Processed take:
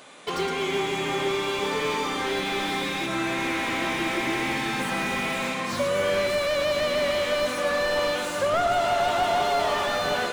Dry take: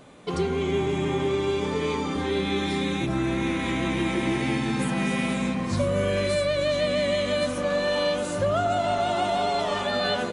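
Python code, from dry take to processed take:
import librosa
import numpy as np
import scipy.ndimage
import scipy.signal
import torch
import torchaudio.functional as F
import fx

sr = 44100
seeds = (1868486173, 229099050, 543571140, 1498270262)

p1 = fx.highpass(x, sr, hz=1400.0, slope=6)
p2 = p1 + fx.echo_single(p1, sr, ms=115, db=-10.0, dry=0)
p3 = fx.slew_limit(p2, sr, full_power_hz=34.0)
y = F.gain(torch.from_numpy(p3), 9.0).numpy()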